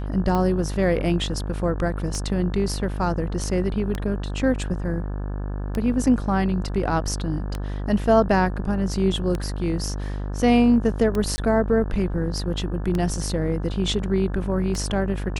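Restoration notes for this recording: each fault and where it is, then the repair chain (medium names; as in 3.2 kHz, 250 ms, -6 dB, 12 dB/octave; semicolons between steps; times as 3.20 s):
buzz 50 Hz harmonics 35 -28 dBFS
tick 33 1/3 rpm -13 dBFS
11.36–11.38 s: dropout 20 ms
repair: de-click; de-hum 50 Hz, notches 35; interpolate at 11.36 s, 20 ms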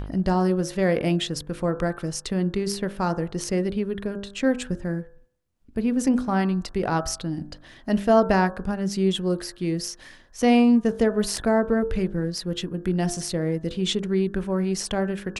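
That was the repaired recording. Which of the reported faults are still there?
nothing left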